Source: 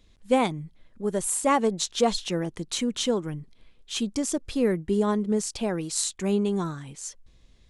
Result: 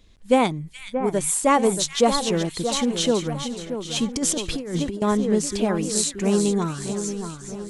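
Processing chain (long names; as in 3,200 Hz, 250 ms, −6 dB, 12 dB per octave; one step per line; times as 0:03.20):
echo with a time of its own for lows and highs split 1,900 Hz, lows 629 ms, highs 423 ms, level −8.5 dB
0:04.16–0:05.02: compressor whose output falls as the input rises −28 dBFS, ratio −0.5
level +4 dB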